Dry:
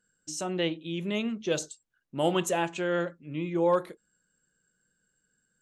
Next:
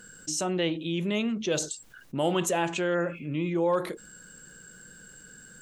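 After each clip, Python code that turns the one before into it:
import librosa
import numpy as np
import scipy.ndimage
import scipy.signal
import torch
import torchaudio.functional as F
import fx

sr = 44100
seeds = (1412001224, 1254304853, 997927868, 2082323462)

y = fx.spec_repair(x, sr, seeds[0], start_s=2.97, length_s=0.25, low_hz=2100.0, high_hz=6100.0, source='after')
y = fx.env_flatten(y, sr, amount_pct=50)
y = F.gain(torch.from_numpy(y), -2.0).numpy()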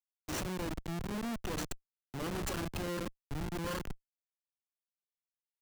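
y = fx.lower_of_two(x, sr, delay_ms=0.68)
y = fx.schmitt(y, sr, flips_db=-30.0)
y = fx.band_widen(y, sr, depth_pct=40)
y = F.gain(torch.from_numpy(y), -3.0).numpy()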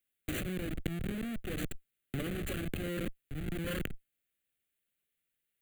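y = fx.fixed_phaser(x, sr, hz=2300.0, stages=4)
y = fx.over_compress(y, sr, threshold_db=-44.0, ratio=-1.0)
y = F.gain(torch.from_numpy(y), 8.0).numpy()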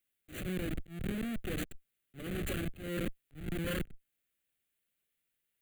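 y = fx.auto_swell(x, sr, attack_ms=222.0)
y = F.gain(torch.from_numpy(y), 1.0).numpy()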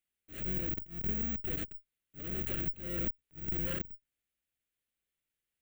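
y = fx.octave_divider(x, sr, octaves=2, level_db=1.0)
y = (np.kron(scipy.signal.resample_poly(y, 1, 2), np.eye(2)[0]) * 2)[:len(y)]
y = F.gain(torch.from_numpy(y), -4.5).numpy()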